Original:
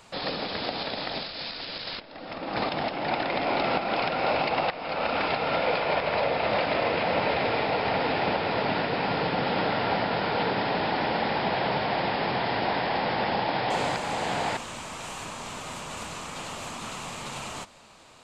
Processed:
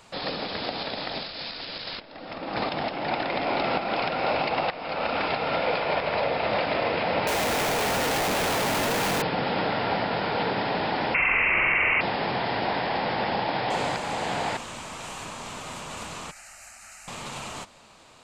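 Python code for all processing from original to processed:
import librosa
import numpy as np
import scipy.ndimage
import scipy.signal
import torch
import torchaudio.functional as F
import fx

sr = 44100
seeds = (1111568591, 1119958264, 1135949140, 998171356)

y = fx.chain(x, sr, fx.doubler(ms=21.0, db=-4),
    fx.schmitt(flips_db=-40.5), at=(7.27, 9.22))
y = fx.chain(y, sr, fx.room_flutter(wall_m=7.7, rt60_s=0.87),
    fx.freq_invert(carrier_hz=2900),
    fx.env_flatten(amount_pct=100), at=(11.14, 12.01))
y = fx.chain(y, sr, fx.tone_stack(knobs='10-0-10'),
    fx.fixed_phaser(hz=690.0, stages=8), at=(16.31, 17.08))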